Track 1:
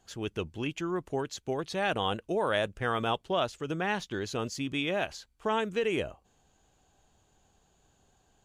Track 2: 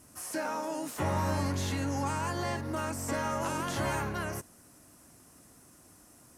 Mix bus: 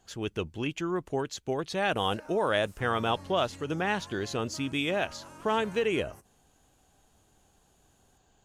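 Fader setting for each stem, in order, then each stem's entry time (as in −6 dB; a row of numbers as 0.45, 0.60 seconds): +1.5, −16.0 decibels; 0.00, 1.80 seconds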